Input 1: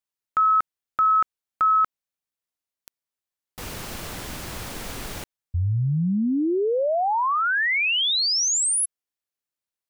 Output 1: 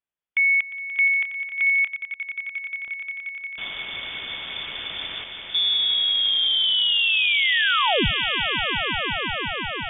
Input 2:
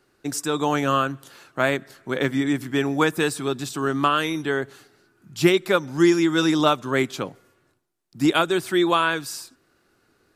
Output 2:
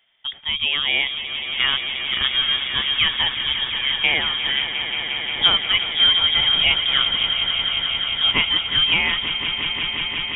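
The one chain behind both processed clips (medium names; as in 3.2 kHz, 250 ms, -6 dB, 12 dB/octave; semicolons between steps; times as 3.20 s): on a send: echo with a slow build-up 177 ms, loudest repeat 5, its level -11 dB; on the sum: frequency inversion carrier 3.5 kHz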